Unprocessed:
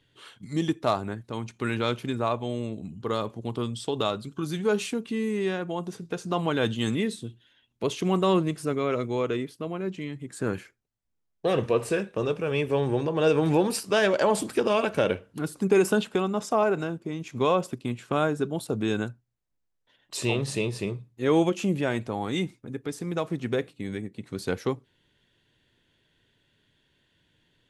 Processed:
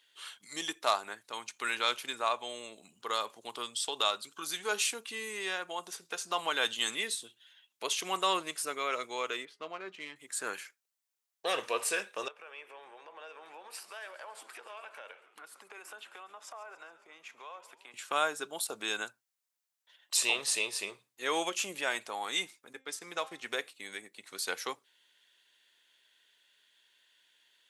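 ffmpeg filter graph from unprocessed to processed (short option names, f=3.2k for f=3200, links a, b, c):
-filter_complex "[0:a]asettb=1/sr,asplit=3[a][b][c];[a]atrim=end=9.454[d];[b]atrim=start=9.45:end=10.16,asetpts=PTS-STARTPTS,afade=t=in:d=0.004:c=qsin,afade=t=out:st=0.706:d=0.004:c=qsin,bandreject=f=206.2:t=h:w=4,bandreject=f=412.4:t=h:w=4,bandreject=f=618.6:t=h:w=4,bandreject=f=824.8:t=h:w=4,bandreject=f=1.031k:t=h:w=4,bandreject=f=1.2372k:t=h:w=4,bandreject=f=1.4434k:t=h:w=4,bandreject=f=1.6496k:t=h:w=4,bandreject=f=1.8558k:t=h:w=4,bandreject=f=2.062k:t=h:w=4,adynamicsmooth=sensitivity=5.5:basefreq=2.7k,asplit=2[e][f];[f]adelay=13,volume=-14dB[g];[e][g]amix=inputs=2:normalize=0,atrim=end_sample=31311[h];[c]atrim=start=10.156[i];[d][h]acrossfade=d=0.004:c1=hsin:c2=qsin[j];[j][i]acrossfade=d=0.004:c1=qsin:c2=hsin,asettb=1/sr,asplit=3[k][l][m];[k]atrim=end=12.284[n];[l]atrim=start=12.28:end=17.94,asetpts=PTS-STARTPTS,afade=t=in:d=0.004:c=qsin,afade=t=out:st=5.656:d=0.004:c=qsin,acrossover=split=440 2700:gain=0.178 1 0.178[o][p][q];[o][p][q]amix=inputs=3:normalize=0,acompressor=threshold=-45dB:ratio=3:attack=3.2:release=140:knee=1:detection=peak,asplit=8[r][s][t][u][v][w][x][y];[s]adelay=138,afreqshift=-76,volume=-16dB[z];[t]adelay=276,afreqshift=-152,volume=-19.9dB[aa];[u]adelay=414,afreqshift=-228,volume=-23.8dB[ab];[v]adelay=552,afreqshift=-304,volume=-27.6dB[ac];[w]adelay=690,afreqshift=-380,volume=-31.5dB[ad];[x]adelay=828,afreqshift=-456,volume=-35.4dB[ae];[y]adelay=966,afreqshift=-532,volume=-39.3dB[af];[r][z][aa][ab][ac][ad][ae][af]amix=inputs=8:normalize=0,atrim=end_sample=249606[ag];[m]atrim=start=17.936[ah];[n][ag]acrossfade=d=0.004:c1=hsin:c2=qsin[ai];[ai][ah]acrossfade=d=0.004:c1=qsin:c2=hsin,asettb=1/sr,asplit=3[aj][ak][al];[aj]atrim=end=22.734[am];[ak]atrim=start=22.73:end=23.48,asetpts=PTS-STARTPTS,afade=t=in:d=0.004:c=qsin,afade=t=out:st=0.746:d=0.004:c=qsin,agate=range=-33dB:threshold=-38dB:ratio=3:release=100:detection=peak,highshelf=f=10k:g=-9.5,bandreject=f=264.5:t=h:w=4,bandreject=f=529:t=h:w=4,bandreject=f=793.5:t=h:w=4,bandreject=f=1.058k:t=h:w=4,bandreject=f=1.3225k:t=h:w=4,bandreject=f=1.587k:t=h:w=4,bandreject=f=1.8515k:t=h:w=4,bandreject=f=2.116k:t=h:w=4,bandreject=f=2.3805k:t=h:w=4,bandreject=f=2.645k:t=h:w=4,bandreject=f=2.9095k:t=h:w=4,bandreject=f=3.174k:t=h:w=4,bandreject=f=3.4385k:t=h:w=4,bandreject=f=3.703k:t=h:w=4,bandreject=f=3.9675k:t=h:w=4,bandreject=f=4.232k:t=h:w=4,bandreject=f=4.4965k:t=h:w=4,bandreject=f=4.761k:t=h:w=4,bandreject=f=5.0255k:t=h:w=4,bandreject=f=5.29k:t=h:w=4,bandreject=f=5.5545k:t=h:w=4,bandreject=f=5.819k:t=h:w=4,bandreject=f=6.0835k:t=h:w=4,bandreject=f=6.348k:t=h:w=4,bandreject=f=6.6125k:t=h:w=4,bandreject=f=6.877k:t=h:w=4,bandreject=f=7.1415k:t=h:w=4,bandreject=f=7.406k:t=h:w=4,bandreject=f=7.6705k:t=h:w=4[an];[al]atrim=start=23.476[ao];[am][an]acrossfade=d=0.004:c1=hsin:c2=qsin[ap];[ap][ao]acrossfade=d=0.004:c1=qsin:c2=hsin,highpass=900,highshelf=f=4.3k:g=9"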